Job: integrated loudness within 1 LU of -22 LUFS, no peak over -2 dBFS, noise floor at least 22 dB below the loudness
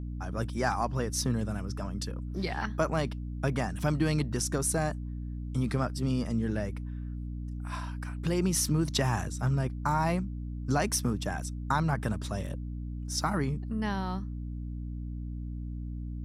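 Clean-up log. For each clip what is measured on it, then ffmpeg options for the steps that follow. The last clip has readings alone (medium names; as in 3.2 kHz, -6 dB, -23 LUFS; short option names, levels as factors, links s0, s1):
hum 60 Hz; highest harmonic 300 Hz; hum level -34 dBFS; loudness -32.0 LUFS; peak level -13.5 dBFS; loudness target -22.0 LUFS
-> -af "bandreject=f=60:t=h:w=6,bandreject=f=120:t=h:w=6,bandreject=f=180:t=h:w=6,bandreject=f=240:t=h:w=6,bandreject=f=300:t=h:w=6"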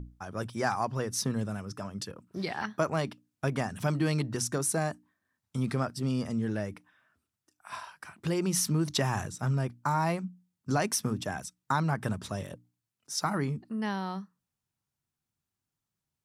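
hum not found; loudness -32.0 LUFS; peak level -14.5 dBFS; loudness target -22.0 LUFS
-> -af "volume=3.16"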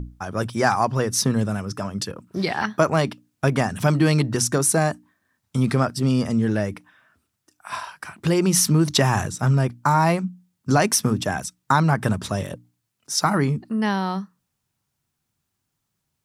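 loudness -22.0 LUFS; peak level -4.5 dBFS; noise floor -78 dBFS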